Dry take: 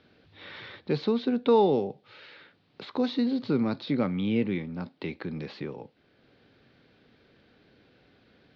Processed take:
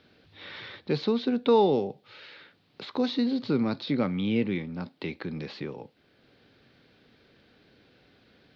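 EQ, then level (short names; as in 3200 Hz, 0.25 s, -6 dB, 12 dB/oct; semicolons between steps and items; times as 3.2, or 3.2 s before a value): high shelf 3700 Hz +6 dB; 0.0 dB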